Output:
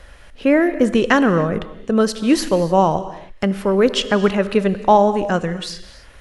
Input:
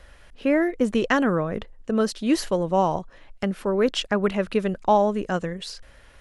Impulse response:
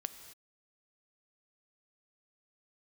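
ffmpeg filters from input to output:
-filter_complex "[0:a]asplit=2[a][b];[1:a]atrim=start_sample=2205,asetrate=39690,aresample=44100[c];[b][c]afir=irnorm=-1:irlink=0,volume=7.5dB[d];[a][d]amix=inputs=2:normalize=0,volume=-3.5dB"

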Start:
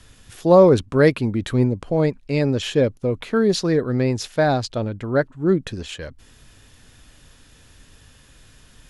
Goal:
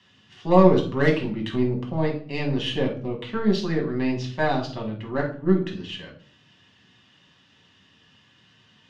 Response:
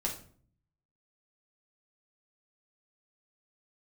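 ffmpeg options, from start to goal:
-filter_complex "[0:a]highpass=f=120:w=0.5412,highpass=f=120:w=1.3066,equalizer=f=530:t=q:w=4:g=-4,equalizer=f=1.1k:t=q:w=4:g=4,equalizer=f=1.9k:t=q:w=4:g=3,equalizer=f=3k:t=q:w=4:g=10,lowpass=f=5.4k:w=0.5412,lowpass=f=5.4k:w=1.3066,aeval=exprs='0.841*(cos(1*acos(clip(val(0)/0.841,-1,1)))-cos(1*PI/2))+0.0168*(cos(6*acos(clip(val(0)/0.841,-1,1)))-cos(6*PI/2))+0.0266*(cos(7*acos(clip(val(0)/0.841,-1,1)))-cos(7*PI/2))':c=same[a];[1:a]atrim=start_sample=2205[b];[a][b]afir=irnorm=-1:irlink=0,volume=-8dB"

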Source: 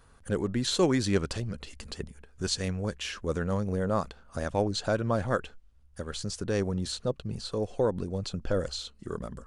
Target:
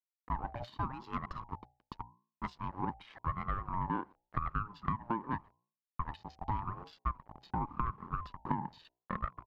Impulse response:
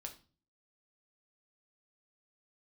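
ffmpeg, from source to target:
-filter_complex "[0:a]highpass=f=340:w=0.5412,highpass=f=340:w=1.3066,equalizer=f=670:t=q:w=4:g=9,equalizer=f=1k:t=q:w=4:g=6,equalizer=f=1.9k:t=q:w=4:g=-3,equalizer=f=3.3k:t=q:w=4:g=9,equalizer=f=4.7k:t=q:w=4:g=4,lowpass=f=8.8k:w=0.5412,lowpass=f=8.8k:w=1.3066,aecho=1:1:1.5:0.69,asplit=2[a][b];[1:a]atrim=start_sample=2205[c];[b][c]afir=irnorm=-1:irlink=0,volume=-8dB[d];[a][d]amix=inputs=2:normalize=0,afwtdn=0.0158,asplit=2[e][f];[f]adelay=120,highpass=300,lowpass=3.4k,asoftclip=type=hard:threshold=-14.5dB,volume=-27dB[g];[e][g]amix=inputs=2:normalize=0,aeval=exprs='val(0)*gte(abs(val(0)),0.00596)':c=same,bandreject=f=60:t=h:w=6,bandreject=f=120:t=h:w=6,bandreject=f=180:t=h:w=6,bandreject=f=240:t=h:w=6,bandreject=f=300:t=h:w=6,bandreject=f=360:t=h:w=6,bandreject=f=420:t=h:w=6,bandreject=f=480:t=h:w=6,adynamicequalizer=threshold=0.0398:dfrequency=720:dqfactor=0.72:tfrequency=720:tqfactor=0.72:attack=5:release=100:ratio=0.375:range=2:mode=cutabove:tftype=bell,acompressor=threshold=-34dB:ratio=8,bandreject=f=3.1k:w=7.6,adynamicsmooth=sensitivity=1:basefreq=830,aeval=exprs='val(0)*sin(2*PI*490*n/s+490*0.3/0.87*sin(2*PI*0.87*n/s))':c=same,volume=6.5dB"

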